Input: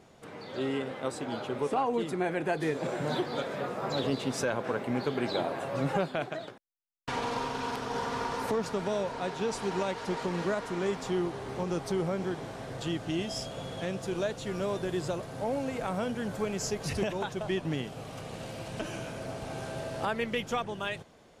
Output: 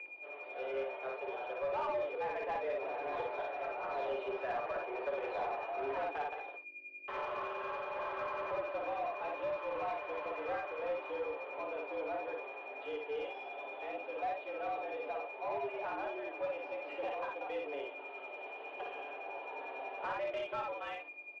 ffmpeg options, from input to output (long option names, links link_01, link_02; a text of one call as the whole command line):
ffmpeg -i in.wav -filter_complex "[0:a]aecho=1:1:6.8:0.4,aeval=exprs='val(0)+0.00398*(sin(2*PI*50*n/s)+sin(2*PI*2*50*n/s)/2+sin(2*PI*3*50*n/s)/3+sin(2*PI*4*50*n/s)/4+sin(2*PI*5*50*n/s)/5)':channel_layout=same,flanger=delay=7.9:depth=7.3:regen=-86:speed=0.18:shape=triangular,acrossover=split=620|2000[link_01][link_02][link_03];[link_02]adynamicsmooth=sensitivity=6.5:basefreq=1000[link_04];[link_01][link_04][link_03]amix=inputs=3:normalize=0,aeval=exprs='val(0)+0.00891*sin(2*PI*2300*n/s)':channel_layout=same,acrusher=bits=7:mix=0:aa=0.5,highpass=frequency=240:width_type=q:width=0.5412,highpass=frequency=240:width_type=q:width=1.307,lowpass=frequency=3000:width_type=q:width=0.5176,lowpass=frequency=3000:width_type=q:width=0.7071,lowpass=frequency=3000:width_type=q:width=1.932,afreqshift=130,flanger=delay=5.7:depth=3.5:regen=-50:speed=0.62:shape=triangular,asplit=2[link_05][link_06];[link_06]aecho=0:1:47|57:0.237|0.708[link_07];[link_05][link_07]amix=inputs=2:normalize=0,asplit=2[link_08][link_09];[link_09]highpass=frequency=720:poles=1,volume=16dB,asoftclip=type=tanh:threshold=-23.5dB[link_10];[link_08][link_10]amix=inputs=2:normalize=0,lowpass=frequency=1200:poles=1,volume=-6dB,volume=-3dB" out.wav